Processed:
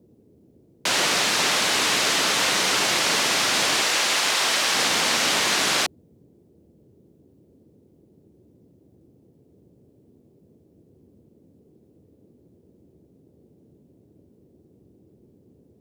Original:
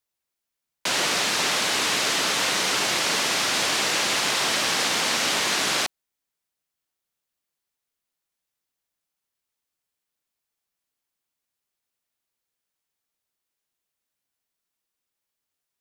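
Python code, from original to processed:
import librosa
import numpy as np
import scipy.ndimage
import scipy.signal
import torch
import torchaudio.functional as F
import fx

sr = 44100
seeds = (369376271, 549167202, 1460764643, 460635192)

y = fx.dmg_noise_band(x, sr, seeds[0], low_hz=71.0, high_hz=420.0, level_db=-58.0)
y = fx.low_shelf(y, sr, hz=250.0, db=-11.5, at=(3.81, 4.75))
y = y * 10.0 ** (2.0 / 20.0)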